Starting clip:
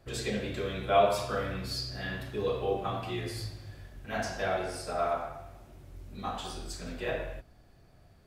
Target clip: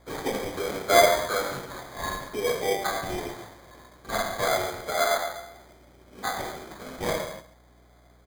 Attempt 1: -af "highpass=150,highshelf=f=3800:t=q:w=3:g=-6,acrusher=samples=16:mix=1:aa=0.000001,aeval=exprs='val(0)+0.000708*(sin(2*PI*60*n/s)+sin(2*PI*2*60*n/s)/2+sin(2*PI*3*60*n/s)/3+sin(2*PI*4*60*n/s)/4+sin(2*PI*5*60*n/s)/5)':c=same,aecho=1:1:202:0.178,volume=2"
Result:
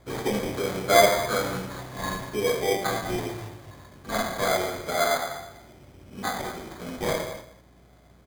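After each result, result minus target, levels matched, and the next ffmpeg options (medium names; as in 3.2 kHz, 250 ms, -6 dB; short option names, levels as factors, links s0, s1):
echo 66 ms late; 125 Hz band +5.0 dB
-af "highpass=150,highshelf=f=3800:t=q:w=3:g=-6,acrusher=samples=16:mix=1:aa=0.000001,aeval=exprs='val(0)+0.000708*(sin(2*PI*60*n/s)+sin(2*PI*2*60*n/s)/2+sin(2*PI*3*60*n/s)/3+sin(2*PI*4*60*n/s)/4+sin(2*PI*5*60*n/s)/5)':c=same,aecho=1:1:136:0.178,volume=2"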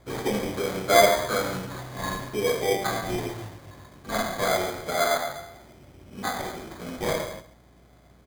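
125 Hz band +5.0 dB
-af "highpass=400,highshelf=f=3800:t=q:w=3:g=-6,acrusher=samples=16:mix=1:aa=0.000001,aeval=exprs='val(0)+0.000708*(sin(2*PI*60*n/s)+sin(2*PI*2*60*n/s)/2+sin(2*PI*3*60*n/s)/3+sin(2*PI*4*60*n/s)/4+sin(2*PI*5*60*n/s)/5)':c=same,aecho=1:1:136:0.178,volume=2"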